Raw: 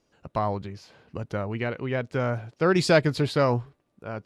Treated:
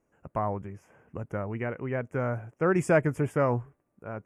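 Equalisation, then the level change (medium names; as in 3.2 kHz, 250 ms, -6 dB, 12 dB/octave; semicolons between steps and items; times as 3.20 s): Butterworth band-stop 4.1 kHz, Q 0.79; -3.0 dB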